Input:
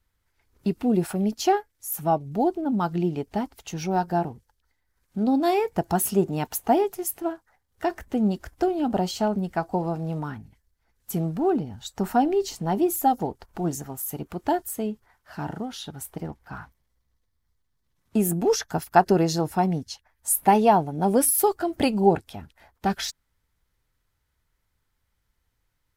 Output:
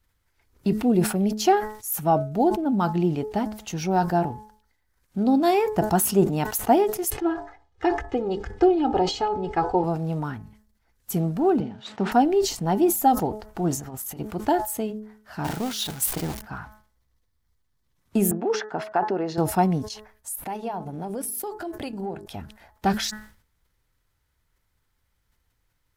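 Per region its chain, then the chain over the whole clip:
0:07.10–0:09.84: high-frequency loss of the air 130 metres + comb filter 2.4 ms, depth 86% + hum removal 99.3 Hz, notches 11
0:11.60–0:12.12: variable-slope delta modulation 64 kbit/s + Chebyshev band-pass filter 200–3,100 Hz
0:13.77–0:14.18: high-shelf EQ 10,000 Hz −8 dB + compressor whose output falls as the input rises −37 dBFS, ratio −0.5
0:15.44–0:16.42: converter with a step at zero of −35 dBFS + noise gate −34 dBFS, range −7 dB + high-shelf EQ 2,400 Hz +9.5 dB
0:18.31–0:19.38: downward compressor 2.5 to 1, threshold −22 dBFS + band-pass filter 310–2,100 Hz
0:19.88–0:22.26: hum removal 50.36 Hz, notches 9 + downward compressor 4 to 1, threshold −31 dBFS + transient designer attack −4 dB, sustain −10 dB
whole clip: hum removal 213.9 Hz, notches 9; level that may fall only so fast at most 110 dB per second; level +2 dB

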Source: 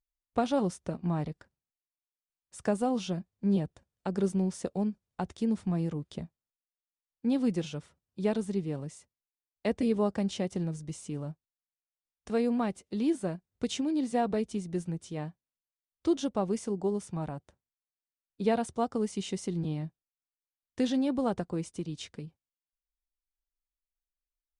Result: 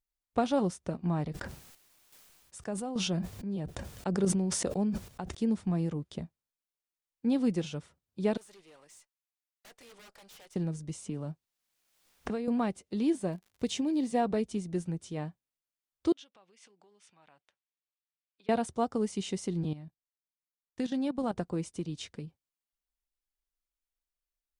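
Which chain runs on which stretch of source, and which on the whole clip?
0:01.29–0:05.35: square-wave tremolo 1.2 Hz, depth 65%, duty 55% + level that may fall only so fast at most 25 dB per second
0:08.37–0:10.56: high-pass filter 1,000 Hz + wrap-around overflow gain 36 dB + tube saturation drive 52 dB, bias 0.35
0:11.06–0:12.48: high-shelf EQ 5,100 Hz −5 dB + multiband upward and downward compressor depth 100%
0:13.13–0:14.19: parametric band 1,400 Hz −9 dB 0.21 octaves + surface crackle 120 per second −50 dBFS
0:16.12–0:18.49: downward compressor 10 to 1, threshold −40 dBFS + resonant band-pass 2,700 Hz, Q 1.4
0:19.73–0:21.36: parametric band 430 Hz −4.5 dB 0.57 octaves + output level in coarse steps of 15 dB
whole clip: no processing

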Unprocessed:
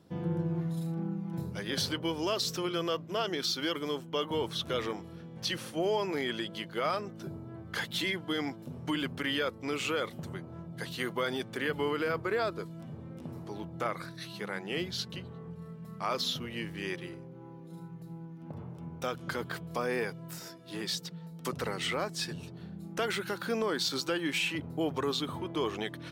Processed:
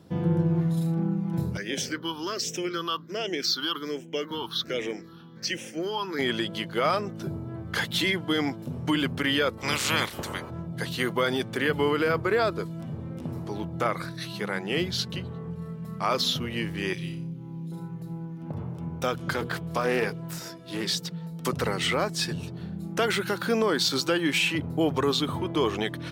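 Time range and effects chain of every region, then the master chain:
0:01.57–0:06.19: all-pass phaser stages 6, 1.3 Hz, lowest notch 550–1,200 Hz + high-pass filter 280 Hz
0:09.57–0:10.49: ceiling on every frequency bin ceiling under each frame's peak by 23 dB + parametric band 720 Hz −5.5 dB 0.38 octaves
0:16.93–0:17.72: flat-topped bell 790 Hz −13.5 dB 2.8 octaves + flutter between parallel walls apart 5.2 metres, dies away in 0.35 s
0:19.33–0:20.96: mains-hum notches 60/120/180/240/300/360/420/480 Hz + highs frequency-modulated by the lows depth 0.15 ms
whole clip: high-pass filter 62 Hz; low-shelf EQ 86 Hz +9 dB; level +6.5 dB

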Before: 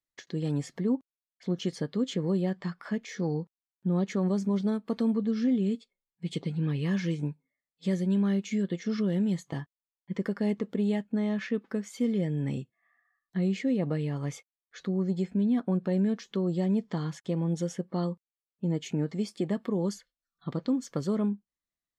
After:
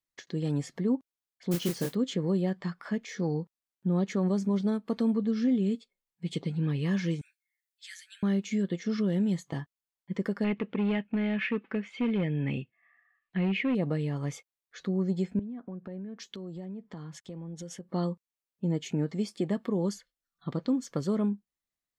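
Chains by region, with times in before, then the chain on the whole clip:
0:01.51–0:01.95: double-tracking delay 29 ms −4 dB + noise that follows the level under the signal 12 dB
0:07.21–0:08.23: Butterworth high-pass 1,400 Hz 96 dB per octave + high-shelf EQ 7,000 Hz +6 dB
0:10.44–0:13.75: gain into a clipping stage and back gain 23.5 dB + low-pass with resonance 2,600 Hz, resonance Q 3.9
0:15.39–0:17.89: downward compressor 12 to 1, threshold −36 dBFS + multiband upward and downward expander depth 100%
whole clip: no processing

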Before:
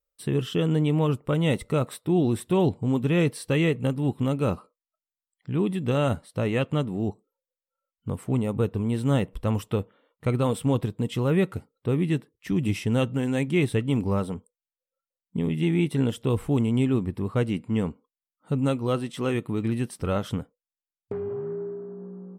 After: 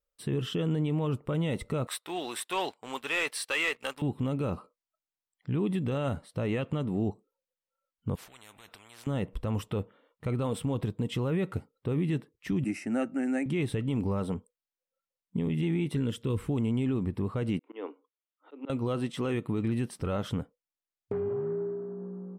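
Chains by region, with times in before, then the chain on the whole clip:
0:01.87–0:04.02: high-pass filter 1,200 Hz + leveller curve on the samples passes 2
0:08.15–0:09.07: downward compressor 3 to 1, threshold −41 dBFS + every bin compressed towards the loudest bin 10 to 1
0:12.64–0:13.46: high-pass filter 210 Hz + phaser with its sweep stopped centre 680 Hz, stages 8 + bad sample-rate conversion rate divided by 2×, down none, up filtered
0:15.95–0:16.50: high-pass filter 45 Hz + parametric band 740 Hz −12.5 dB 0.57 octaves
0:17.59–0:18.70: Chebyshev band-pass filter 290–3,700 Hz, order 5 + volume swells 204 ms
whole clip: high-shelf EQ 5,800 Hz −6.5 dB; brickwall limiter −20.5 dBFS

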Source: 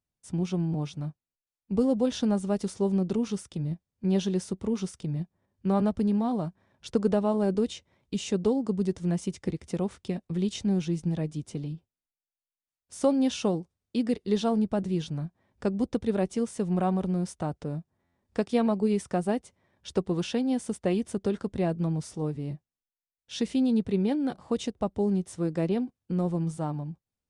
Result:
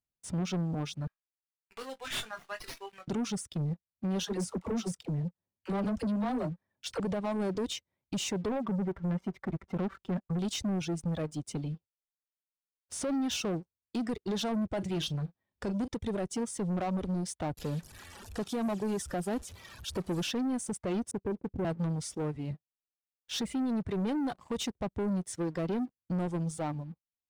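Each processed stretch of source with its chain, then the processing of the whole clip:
0:01.07–0:03.08: high-pass with resonance 1,800 Hz, resonance Q 2.2 + flutter between parallel walls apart 3.9 metres, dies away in 0.22 s + windowed peak hold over 5 samples
0:04.23–0:07.00: double-tracking delay 23 ms −14 dB + all-pass dispersion lows, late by 54 ms, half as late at 450 Hz
0:08.48–0:10.39: low-pass with resonance 1,400 Hz, resonance Q 1.5 + comb filter 5.2 ms, depth 84%
0:14.73–0:15.88: parametric band 3,100 Hz +6 dB 1.5 octaves + double-tracking delay 40 ms −12.5 dB
0:17.57–0:20.27: linear delta modulator 64 kbit/s, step −41 dBFS + notch filter 2,100 Hz, Q 6.6
0:21.11–0:21.65: Butterworth low-pass 550 Hz 72 dB per octave + low-shelf EQ 140 Hz −4.5 dB
whole clip: reverb reduction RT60 1.9 s; brickwall limiter −24 dBFS; leveller curve on the samples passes 2; level −3 dB

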